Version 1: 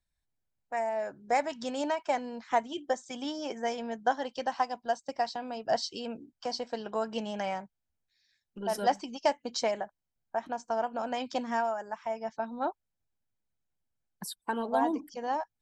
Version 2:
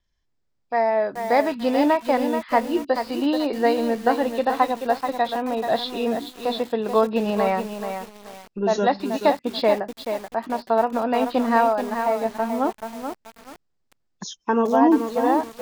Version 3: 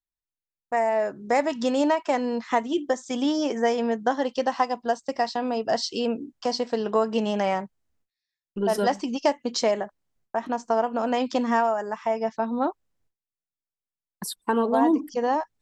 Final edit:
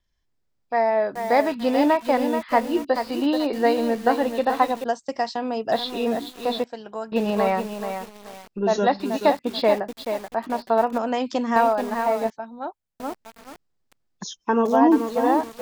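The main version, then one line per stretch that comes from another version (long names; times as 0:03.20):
2
0:04.84–0:05.72: punch in from 3
0:06.64–0:07.12: punch in from 1
0:10.98–0:11.56: punch in from 3
0:12.30–0:13.00: punch in from 1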